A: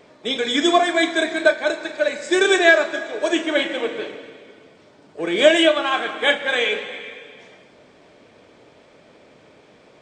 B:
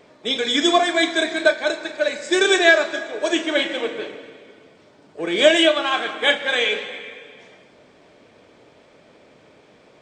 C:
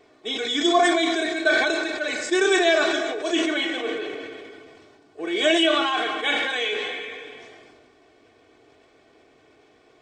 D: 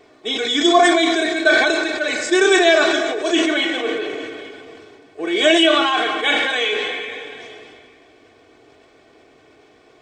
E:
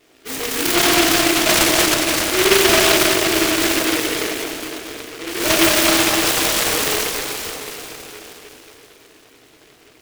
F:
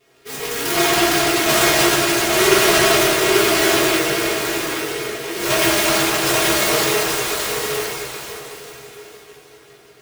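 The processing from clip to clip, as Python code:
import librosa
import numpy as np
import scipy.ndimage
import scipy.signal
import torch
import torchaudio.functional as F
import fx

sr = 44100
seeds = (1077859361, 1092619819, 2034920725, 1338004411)

y1 = fx.dynamic_eq(x, sr, hz=4800.0, q=1.0, threshold_db=-37.0, ratio=4.0, max_db=5)
y1 = y1 * librosa.db_to_amplitude(-1.0)
y2 = y1 + 0.69 * np.pad(y1, (int(2.7 * sr / 1000.0), 0))[:len(y1)]
y2 = fx.sustainer(y2, sr, db_per_s=26.0)
y2 = y2 * librosa.db_to_amplitude(-7.0)
y3 = y2 + 10.0 ** (-22.5 / 20.0) * np.pad(y2, (int(840 * sr / 1000.0), 0))[:len(y2)]
y3 = y3 * librosa.db_to_amplitude(5.5)
y4 = fx.rev_plate(y3, sr, seeds[0], rt60_s=4.3, hf_ratio=0.8, predelay_ms=0, drr_db=-8.5)
y4 = fx.noise_mod_delay(y4, sr, seeds[1], noise_hz=2100.0, depth_ms=0.27)
y4 = y4 * librosa.db_to_amplitude(-8.5)
y5 = y4 + 10.0 ** (-3.5 / 20.0) * np.pad(y4, (int(832 * sr / 1000.0), 0))[:len(y4)]
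y5 = fx.rev_fdn(y5, sr, rt60_s=0.57, lf_ratio=0.75, hf_ratio=0.55, size_ms=43.0, drr_db=-4.5)
y5 = y5 * librosa.db_to_amplitude(-6.5)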